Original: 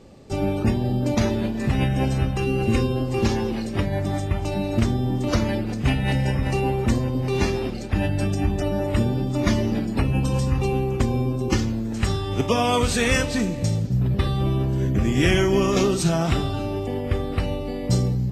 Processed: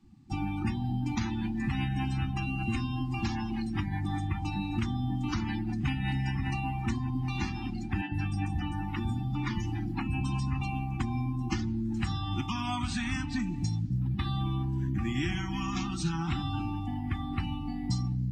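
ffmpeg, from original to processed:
-filter_complex "[0:a]asettb=1/sr,asplit=3[s0][s1][s2];[s0]atrim=end=8.014[s3];[s1]atrim=start=8.01:end=10.21,asetpts=PTS-STARTPTS,afade=t=in:d=0.004:c=qsin,afade=t=out:st=2.196:d=0.004:c=qsin,acrossover=split=230|5800[s4][s5][s6];[s4]adelay=100[s7];[s6]adelay=130[s8];[s7][s5][s8]amix=inputs=3:normalize=0,atrim=end_sample=97020[s9];[s2]atrim=start=10.206[s10];[s3][s9]acrossfade=d=0.004:c1=hsin:c2=qsin[s11];[s11][s10]acrossfade=d=0.004:c1=qsin:c2=hsin,afftdn=nr=16:nf=-35,acrossover=split=80|1000|6500[s12][s13][s14][s15];[s12]acompressor=threshold=0.0112:ratio=4[s16];[s13]acompressor=threshold=0.0398:ratio=4[s17];[s14]acompressor=threshold=0.0141:ratio=4[s18];[s15]acompressor=threshold=0.00126:ratio=4[s19];[s16][s17][s18][s19]amix=inputs=4:normalize=0,afftfilt=real='re*(1-between(b*sr/4096,360,730))':imag='im*(1-between(b*sr/4096,360,730))':win_size=4096:overlap=0.75,volume=0.841"

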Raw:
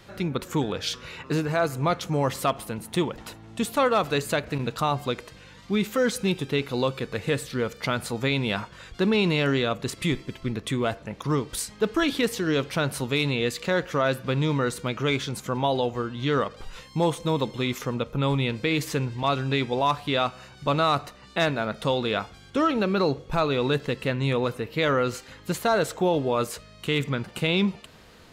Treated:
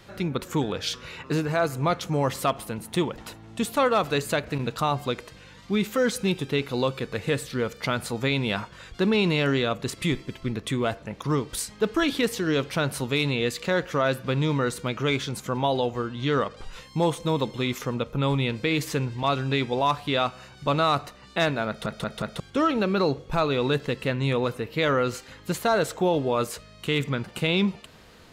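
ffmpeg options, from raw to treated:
-filter_complex "[0:a]asettb=1/sr,asplit=3[s0][s1][s2];[s0]atrim=end=16.094[s3];[s1]atrim=start=16.09:end=16.72,asetpts=PTS-STARTPTS,afade=t=in:d=0.004:c=qsin,afade=t=out:st=0.626:d=0.004:c=qsin,lowpass=f=11000:w=0.5412,lowpass=f=11000:w=1.3066[s4];[s2]atrim=start=16.716[s5];[s3][s4]acrossfade=d=0.004:c1=hsin:c2=qsin[s6];[s6][s5]acrossfade=d=0.004:c1=qsin:c2=hsin,asplit=5[s7][s8][s9][s10][s11];[s7]atrim=end=21.862[s12];[s8]atrim=start=21.678:end=21.862[s13];[s9]atrim=start=21.678:end=21.862[s14];[s10]atrim=start=21.678:end=21.862[s15];[s11]atrim=start=22.398[s16];[s12][s13]acrossfade=d=0.004:c1=hsin:c2=hsin[s17];[s17][s14]acrossfade=d=0.004:c1=hsin:c2=hsin[s18];[s18][s15]acrossfade=d=0.004:c1=hsin:c2=hsin[s19];[s19][s16]acrossfade=d=0.004:c1=hsin:c2=hsin"

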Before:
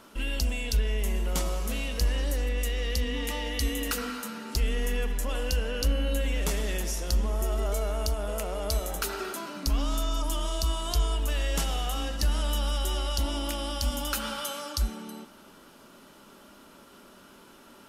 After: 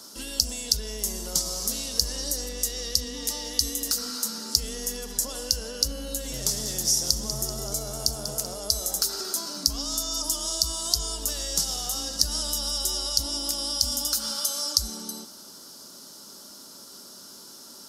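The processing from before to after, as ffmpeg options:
-filter_complex "[0:a]asettb=1/sr,asplit=3[s0][s1][s2];[s0]atrim=end=6.124[s3];[s1]atrim=start=6.12:end=8.55,asetpts=PTS-STARTPTS,afade=t=in:d=0.004:c=qsin,afade=t=out:st=2.426:d=0.004:c=qsin,asplit=8[s4][s5][s6][s7][s8][s9][s10][s11];[s5]adelay=192,afreqshift=85,volume=0.237[s12];[s6]adelay=384,afreqshift=170,volume=0.14[s13];[s7]adelay=576,afreqshift=255,volume=0.0822[s14];[s8]adelay=768,afreqshift=340,volume=0.049[s15];[s9]adelay=960,afreqshift=425,volume=0.0288[s16];[s10]adelay=1152,afreqshift=510,volume=0.017[s17];[s11]adelay=1344,afreqshift=595,volume=0.01[s18];[s4][s12][s13][s14][s15][s16][s17][s18]amix=inputs=8:normalize=0,atrim=end_sample=107163[s19];[s2]atrim=start=8.546[s20];[s3][s19]acrossfade=d=0.004:c1=hsin:c2=qsin[s21];[s21][s20]acrossfade=d=0.004:c1=qsin:c2=hsin,highpass=93,acrossover=split=130[s22][s23];[s23]acompressor=threshold=0.02:ratio=6[s24];[s22][s24]amix=inputs=2:normalize=0,highshelf=f=3600:t=q:w=3:g=12.5"

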